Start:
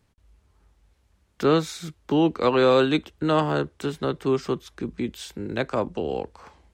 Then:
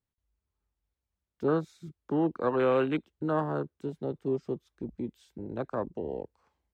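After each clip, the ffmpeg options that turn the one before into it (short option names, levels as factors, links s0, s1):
-af "afwtdn=0.0501,volume=0.447"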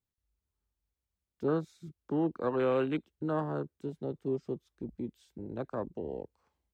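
-af "equalizer=f=1300:t=o:w=2.6:g=-3,volume=0.794"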